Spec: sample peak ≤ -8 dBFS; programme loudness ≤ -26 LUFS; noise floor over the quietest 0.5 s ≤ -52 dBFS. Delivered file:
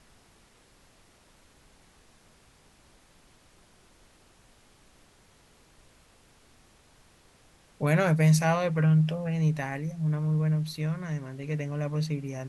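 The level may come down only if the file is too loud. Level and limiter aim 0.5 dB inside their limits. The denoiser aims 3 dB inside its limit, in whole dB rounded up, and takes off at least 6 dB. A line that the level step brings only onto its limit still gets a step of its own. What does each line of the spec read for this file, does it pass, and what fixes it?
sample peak -12.0 dBFS: OK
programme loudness -27.0 LUFS: OK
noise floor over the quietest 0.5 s -60 dBFS: OK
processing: none

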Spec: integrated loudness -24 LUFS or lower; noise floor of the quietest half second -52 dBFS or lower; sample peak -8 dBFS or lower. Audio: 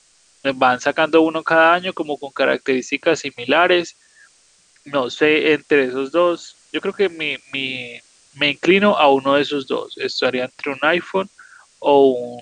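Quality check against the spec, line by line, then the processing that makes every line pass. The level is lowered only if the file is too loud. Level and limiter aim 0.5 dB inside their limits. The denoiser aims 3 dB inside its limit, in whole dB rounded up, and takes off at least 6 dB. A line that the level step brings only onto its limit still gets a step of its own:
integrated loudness -18.0 LUFS: fail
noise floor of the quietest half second -55 dBFS: OK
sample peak -2.0 dBFS: fail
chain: gain -6.5 dB

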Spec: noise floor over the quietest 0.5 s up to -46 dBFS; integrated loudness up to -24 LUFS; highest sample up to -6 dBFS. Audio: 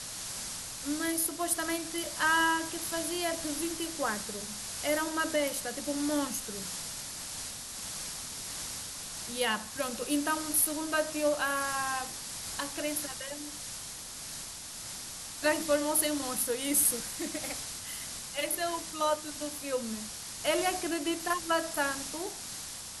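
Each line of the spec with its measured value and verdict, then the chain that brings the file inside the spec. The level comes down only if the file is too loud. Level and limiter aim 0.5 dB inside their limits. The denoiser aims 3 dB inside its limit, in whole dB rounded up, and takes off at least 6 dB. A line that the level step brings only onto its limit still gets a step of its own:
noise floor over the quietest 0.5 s -43 dBFS: fail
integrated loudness -32.0 LUFS: OK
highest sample -11.0 dBFS: OK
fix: denoiser 6 dB, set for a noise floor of -43 dBFS

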